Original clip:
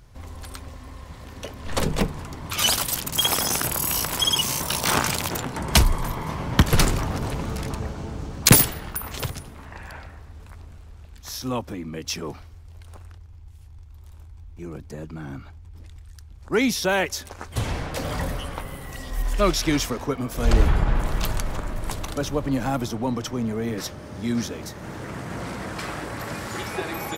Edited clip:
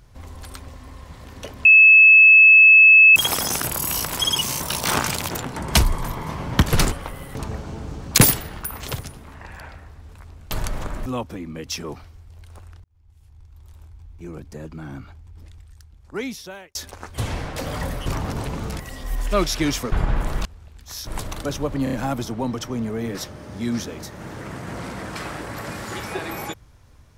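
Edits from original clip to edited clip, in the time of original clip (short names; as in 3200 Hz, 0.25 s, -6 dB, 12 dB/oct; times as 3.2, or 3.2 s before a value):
1.65–3.16 bleep 2600 Hz -6.5 dBFS
6.92–7.66 swap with 18.44–18.87
10.82–11.44 swap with 21.24–21.79
13.22–14.29 fade in equal-power
15.79–17.13 fade out
19.99–20.71 cut
22.56 stutter 0.03 s, 4 plays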